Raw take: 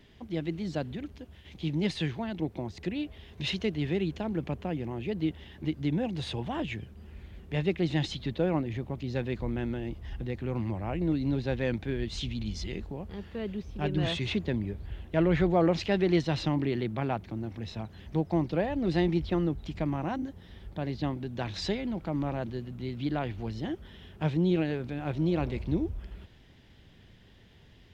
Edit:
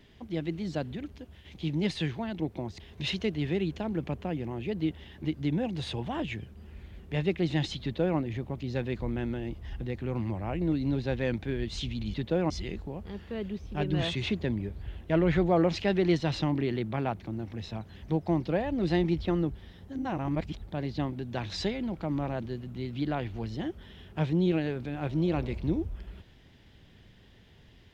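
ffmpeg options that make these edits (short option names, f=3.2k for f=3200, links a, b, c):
-filter_complex "[0:a]asplit=6[a][b][c][d][e][f];[a]atrim=end=2.802[g];[b]atrim=start=3.198:end=12.542[h];[c]atrim=start=8.218:end=8.582[i];[d]atrim=start=12.538:end=19.592[j];[e]atrim=start=19.588:end=20.662,asetpts=PTS-STARTPTS,areverse[k];[f]atrim=start=20.658[l];[g][h]acrossfade=d=0.004:c1=hsin:c2=hsin[m];[m][i]acrossfade=d=0.004:c1=hsin:c2=hsin[n];[n][j]acrossfade=d=0.004:c1=hsin:c2=hsin[o];[o][k]acrossfade=d=0.004:c1=hsin:c2=hsin[p];[p][l]acrossfade=d=0.004:c1=hsin:c2=hsin"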